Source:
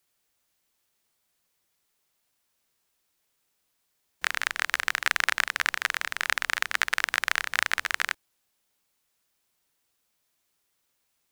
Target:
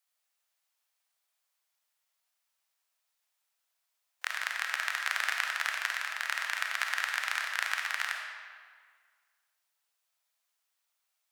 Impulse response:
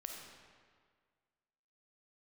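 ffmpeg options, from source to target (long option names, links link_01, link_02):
-filter_complex "[0:a]highpass=frequency=640:width=0.5412,highpass=frequency=640:width=1.3066[link_01];[1:a]atrim=start_sample=2205[link_02];[link_01][link_02]afir=irnorm=-1:irlink=0,volume=-2.5dB"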